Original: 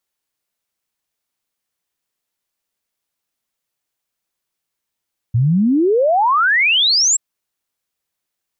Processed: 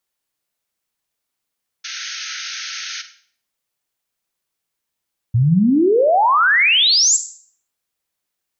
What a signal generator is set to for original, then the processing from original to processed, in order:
log sweep 110 Hz -> 7.8 kHz 1.83 s -11 dBFS
painted sound noise, 1.84–3.02 s, 1.3–6.6 kHz -29 dBFS; Schroeder reverb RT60 0.5 s, DRR 10.5 dB

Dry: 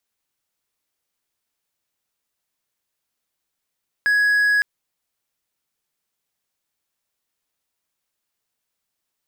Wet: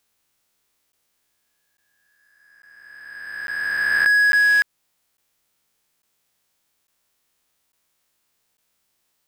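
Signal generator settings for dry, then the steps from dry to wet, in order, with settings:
tone triangle 1.67 kHz -12.5 dBFS 0.56 s
reverse spectral sustain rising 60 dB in 2.23 s; in parallel at -2 dB: compression, threshold -28 dBFS; on the sum: crackling interface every 0.85 s, samples 512, zero, from 0.92 s

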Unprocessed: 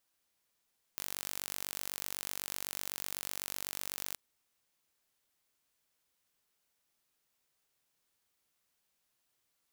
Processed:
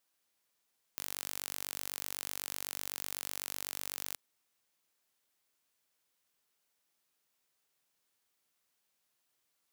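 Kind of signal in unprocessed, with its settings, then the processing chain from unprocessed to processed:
pulse train 48 per s, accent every 0, -11.5 dBFS 3.17 s
bass shelf 89 Hz -11.5 dB

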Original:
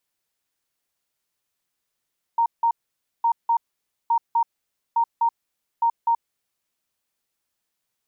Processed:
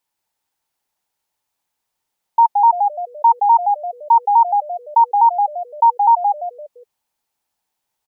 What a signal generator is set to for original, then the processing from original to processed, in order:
beep pattern sine 928 Hz, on 0.08 s, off 0.17 s, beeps 2, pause 0.53 s, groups 5, -16 dBFS
peaking EQ 880 Hz +13 dB 0.31 oct; on a send: frequency-shifting echo 171 ms, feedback 35%, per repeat -110 Hz, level -5 dB

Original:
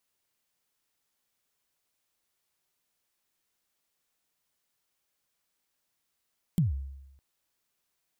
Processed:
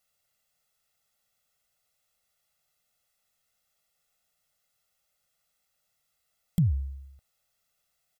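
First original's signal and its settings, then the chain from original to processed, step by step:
kick drum length 0.61 s, from 190 Hz, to 68 Hz, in 144 ms, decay 0.95 s, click on, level -19 dB
comb 1.5 ms, depth 91%

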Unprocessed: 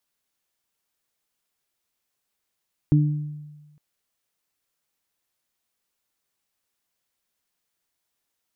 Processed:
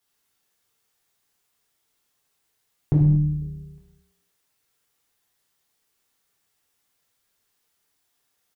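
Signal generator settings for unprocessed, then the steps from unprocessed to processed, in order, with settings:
additive tone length 0.86 s, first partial 149 Hz, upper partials -4.5 dB, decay 1.26 s, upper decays 0.63 s, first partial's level -13 dB
compression, threshold -22 dBFS; frequency-shifting echo 99 ms, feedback 45%, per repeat -110 Hz, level -11.5 dB; gated-style reverb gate 260 ms falling, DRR -5 dB

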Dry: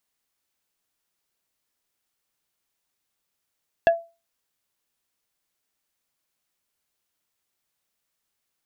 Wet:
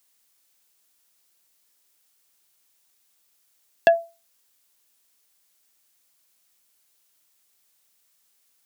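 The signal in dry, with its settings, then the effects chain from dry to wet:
wood hit plate, lowest mode 672 Hz, decay 0.29 s, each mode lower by 7.5 dB, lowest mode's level -10 dB
Bessel high-pass 160 Hz, order 2; treble shelf 3.6 kHz +9.5 dB; in parallel at -2 dB: peak limiter -13.5 dBFS

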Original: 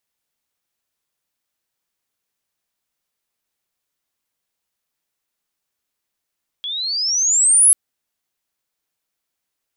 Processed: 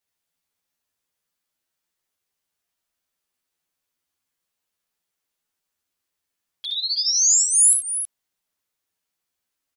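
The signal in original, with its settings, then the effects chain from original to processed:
sweep logarithmic 3.3 kHz -> 11 kHz -23.5 dBFS -> -7 dBFS 1.09 s
peak limiter -11 dBFS; touch-sensitive flanger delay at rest 11.7 ms, full sweep at -17.5 dBFS; multi-tap echo 62/73/91/321 ms -7.5/-9.5/-14/-10 dB

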